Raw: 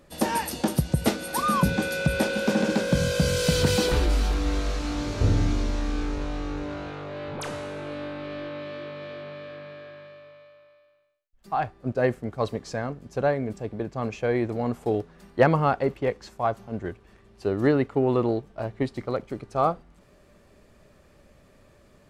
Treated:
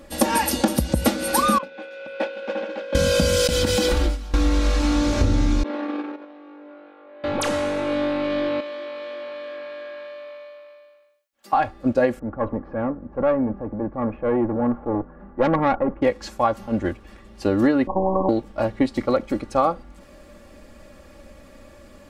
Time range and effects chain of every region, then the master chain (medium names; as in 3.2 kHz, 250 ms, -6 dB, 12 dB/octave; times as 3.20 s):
1.58–2.95 s: Chebyshev band-pass 460–2800 Hz + expander -19 dBFS
3.47–4.34 s: gate with hold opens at -12 dBFS, closes at -20 dBFS + compression 3:1, threshold -26 dBFS
5.63–7.24 s: gate -27 dBFS, range -17 dB + high-pass 310 Hz 24 dB/octave + distance through air 450 m
8.60–11.53 s: high-pass 400 Hz + compression 2:1, threshold -45 dBFS
12.19–16.02 s: low-pass 1.4 kHz 24 dB/octave + transient shaper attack -6 dB, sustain +2 dB + valve stage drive 19 dB, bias 0.55
17.87–18.29 s: robot voice 190 Hz + brick-wall FIR low-pass 1.1 kHz + spectrum-flattening compressor 4:1
whole clip: comb 3.6 ms, depth 70%; compression, threshold -23 dBFS; trim +8 dB